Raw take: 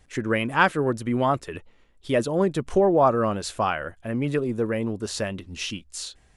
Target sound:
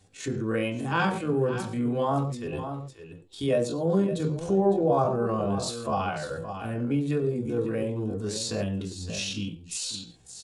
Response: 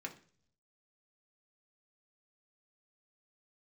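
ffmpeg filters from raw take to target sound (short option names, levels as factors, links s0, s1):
-filter_complex "[0:a]equalizer=f=125:t=o:w=1:g=12,equalizer=f=250:t=o:w=1:g=-4,equalizer=f=500:t=o:w=1:g=4,equalizer=f=2000:t=o:w=1:g=-10,equalizer=f=4000:t=o:w=1:g=7,equalizer=f=8000:t=o:w=1:g=6,aecho=1:1:339:0.251[s0];[1:a]atrim=start_sample=2205,atrim=end_sample=3969[s1];[s0][s1]afir=irnorm=-1:irlink=0,asplit=2[s2][s3];[s3]acompressor=threshold=0.0282:ratio=6,volume=1.26[s4];[s2][s4]amix=inputs=2:normalize=0,atempo=0.61,volume=0.531"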